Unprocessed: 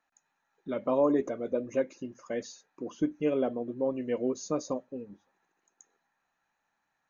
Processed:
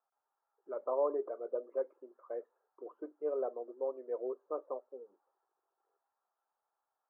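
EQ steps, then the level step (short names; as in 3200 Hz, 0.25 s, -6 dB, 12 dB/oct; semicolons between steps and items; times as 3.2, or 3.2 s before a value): elliptic band-pass 390–1300 Hz, stop band 60 dB; -5.0 dB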